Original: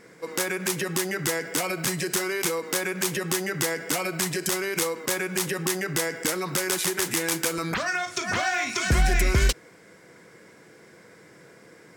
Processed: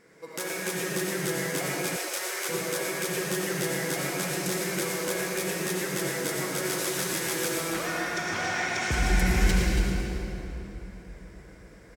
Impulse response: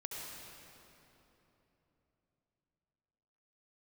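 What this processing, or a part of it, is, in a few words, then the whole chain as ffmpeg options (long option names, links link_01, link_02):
cave: -filter_complex "[0:a]aecho=1:1:281:0.335[link_01];[1:a]atrim=start_sample=2205[link_02];[link_01][link_02]afir=irnorm=-1:irlink=0,asettb=1/sr,asplit=3[link_03][link_04][link_05];[link_03]atrim=end=1.964[link_06];[link_04]atrim=start=1.96:end=2.49,asetpts=PTS-STARTPTS,afade=type=in:duration=0.004:curve=qsin,afade=type=out:start_time=0.526:duration=0.004:curve=qsin,highpass=frequency=450:width=0.5412,highpass=frequency=450:width=1.3066[link_07];[link_05]atrim=start=2.486[link_08];[link_06][link_07]acrossfade=duration=0.004:curve1=hsin:curve2=qsin[link_09];[link_09][link_08]acrossfade=duration=0.004:curve1=qsin:curve2=hsin,asplit=4[link_10][link_11][link_12][link_13];[link_11]adelay=114,afreqshift=140,volume=-9.5dB[link_14];[link_12]adelay=228,afreqshift=280,volume=-19.7dB[link_15];[link_13]adelay=342,afreqshift=420,volume=-29.8dB[link_16];[link_10][link_14][link_15][link_16]amix=inputs=4:normalize=0,volume=-3dB"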